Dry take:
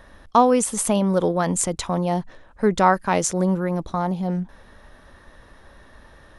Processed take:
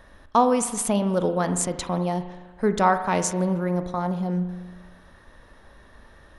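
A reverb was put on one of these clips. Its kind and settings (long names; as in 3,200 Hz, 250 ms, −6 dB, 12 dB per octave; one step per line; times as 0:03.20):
spring reverb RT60 1.3 s, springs 39 ms, chirp 35 ms, DRR 9 dB
level −3 dB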